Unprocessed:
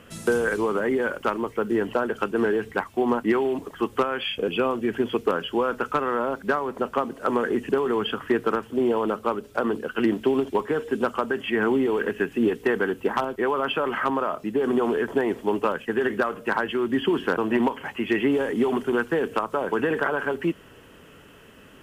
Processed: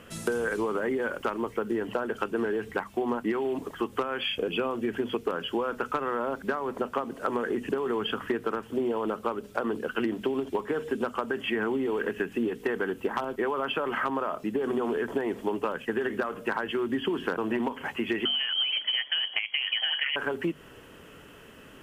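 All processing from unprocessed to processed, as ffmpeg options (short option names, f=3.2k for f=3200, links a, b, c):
-filter_complex "[0:a]asettb=1/sr,asplit=3[a][b][c];[a]atrim=end=18.254[d];[b]atrim=start=18.25:end=20.16,asetpts=PTS-STARTPTS,afade=t=in:d=0.004:c=qsin,afade=t=out:st=1.906:d=0.004:c=qsin,lowpass=f=2.9k:t=q:w=0.5098,lowpass=f=2.9k:t=q:w=0.6013,lowpass=f=2.9k:t=q:w=0.9,lowpass=f=2.9k:t=q:w=2.563,afreqshift=-3400,highpass=f=130:p=1[e];[c]atrim=start=20.156[f];[d][e]acrossfade=d=0.004:c1=hsin:c2=qsin[g];[g][f]acrossfade=d=0.004:c1=qsin:c2=hsin,bandreject=f=50:t=h:w=6,bandreject=f=100:t=h:w=6,bandreject=f=150:t=h:w=6,bandreject=f=200:t=h:w=6,bandreject=f=250:t=h:w=6,acompressor=threshold=-25dB:ratio=6"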